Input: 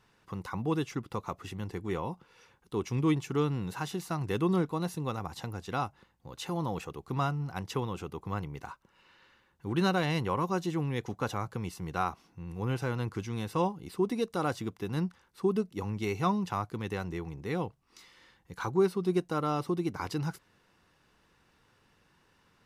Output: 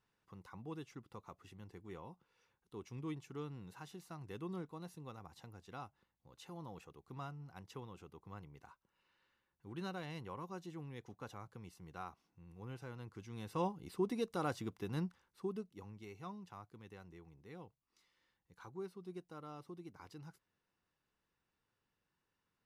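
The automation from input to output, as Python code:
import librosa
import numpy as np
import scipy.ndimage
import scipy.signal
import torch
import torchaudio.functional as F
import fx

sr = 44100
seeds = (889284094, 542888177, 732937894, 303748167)

y = fx.gain(x, sr, db=fx.line((13.12, -16.5), (13.68, -7.0), (14.96, -7.0), (16.08, -20.0)))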